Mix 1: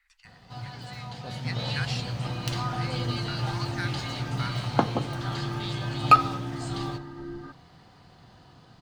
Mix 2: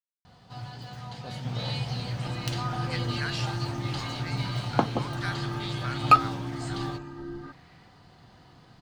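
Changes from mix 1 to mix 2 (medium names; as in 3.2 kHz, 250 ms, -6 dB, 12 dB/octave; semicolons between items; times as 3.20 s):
speech: entry +1.45 s; reverb: off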